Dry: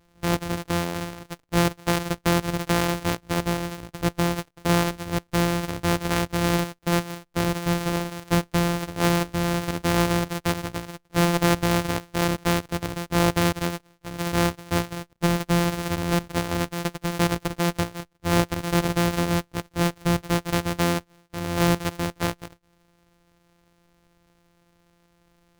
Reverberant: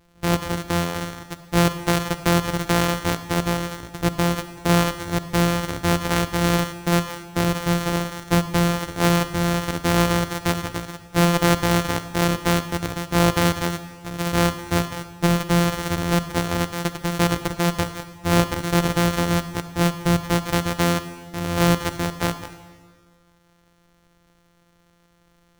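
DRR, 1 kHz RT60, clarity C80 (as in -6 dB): 11.0 dB, 1.6 s, 13.0 dB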